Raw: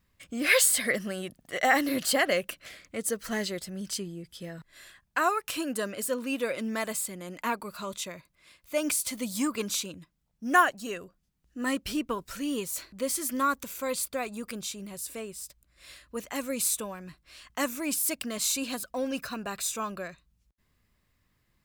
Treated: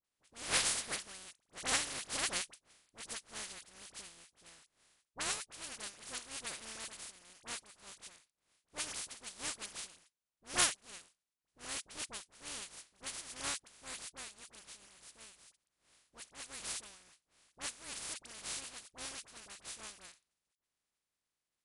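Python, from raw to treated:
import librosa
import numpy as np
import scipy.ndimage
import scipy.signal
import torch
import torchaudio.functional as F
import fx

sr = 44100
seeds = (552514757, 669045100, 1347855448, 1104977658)

y = fx.spec_flatten(x, sr, power=0.14)
y = fx.brickwall_lowpass(y, sr, high_hz=11000.0)
y = fx.dispersion(y, sr, late='highs', ms=45.0, hz=1400.0)
y = fx.upward_expand(y, sr, threshold_db=-43.0, expansion=1.5)
y = F.gain(torch.from_numpy(y), -6.0).numpy()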